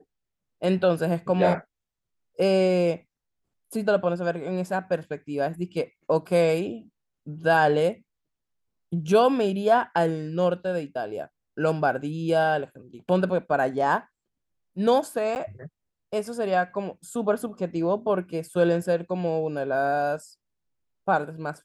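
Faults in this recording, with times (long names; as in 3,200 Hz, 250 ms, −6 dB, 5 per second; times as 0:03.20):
0:15.35–0:15.36: drop-out 9.8 ms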